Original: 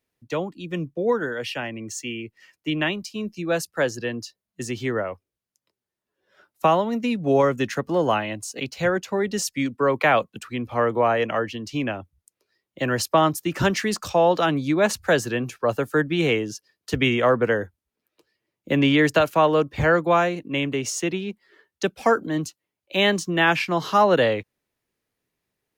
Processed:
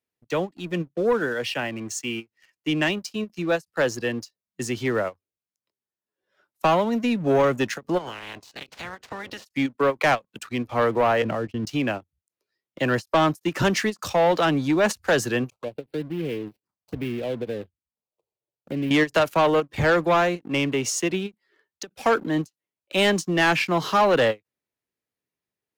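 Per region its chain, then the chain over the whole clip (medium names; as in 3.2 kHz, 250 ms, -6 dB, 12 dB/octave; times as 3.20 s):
7.97–9.45 s: spectral peaks clipped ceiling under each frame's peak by 24 dB + compression 20:1, threshold -31 dBFS + distance through air 140 m
11.22–11.67 s: tilt EQ -3.5 dB/octave + level held to a coarse grid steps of 14 dB + expander -34 dBFS
15.50–18.91 s: median filter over 25 samples + compression 1.5:1, threshold -38 dBFS + touch-sensitive phaser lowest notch 250 Hz, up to 1.2 kHz, full sweep at -33 dBFS
whole clip: high-pass 78 Hz 6 dB/octave; waveshaping leveller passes 2; endings held to a fixed fall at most 490 dB/s; trim -5.5 dB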